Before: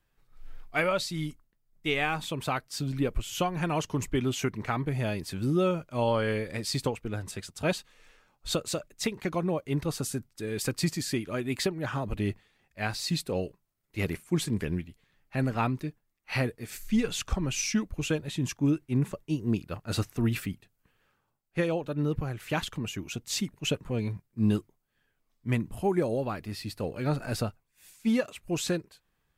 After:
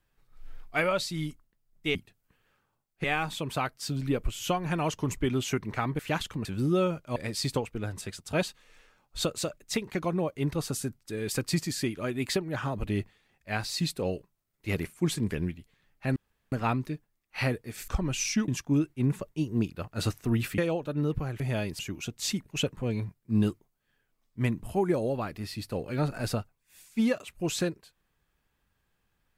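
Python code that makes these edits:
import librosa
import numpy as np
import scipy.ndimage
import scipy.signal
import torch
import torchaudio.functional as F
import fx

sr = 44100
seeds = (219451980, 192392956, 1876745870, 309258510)

y = fx.edit(x, sr, fx.swap(start_s=4.9, length_s=0.39, other_s=22.41, other_length_s=0.46),
    fx.cut(start_s=6.0, length_s=0.46),
    fx.insert_room_tone(at_s=15.46, length_s=0.36),
    fx.cut(start_s=16.82, length_s=0.44),
    fx.cut(start_s=17.86, length_s=0.54),
    fx.move(start_s=20.5, length_s=1.09, to_s=1.95), tone=tone)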